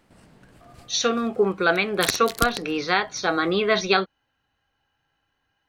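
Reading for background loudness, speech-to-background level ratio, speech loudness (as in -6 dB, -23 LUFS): -29.5 LUFS, 7.0 dB, -22.5 LUFS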